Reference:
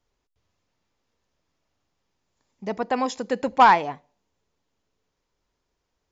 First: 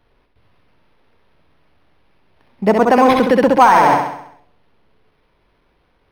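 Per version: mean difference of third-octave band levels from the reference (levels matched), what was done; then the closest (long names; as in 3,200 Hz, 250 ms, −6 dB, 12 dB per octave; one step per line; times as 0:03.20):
9.0 dB: flutter between parallel walls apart 11.3 metres, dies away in 0.71 s
boost into a limiter +17.5 dB
linearly interpolated sample-rate reduction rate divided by 6×
level −1 dB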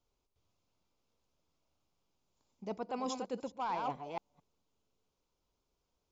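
6.0 dB: delay that plays each chunk backwards 220 ms, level −9 dB
parametric band 1,800 Hz −14.5 dB 0.33 octaves
reversed playback
downward compressor 16 to 1, threshold −28 dBFS, peak gain reduction 18 dB
reversed playback
level −5.5 dB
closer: second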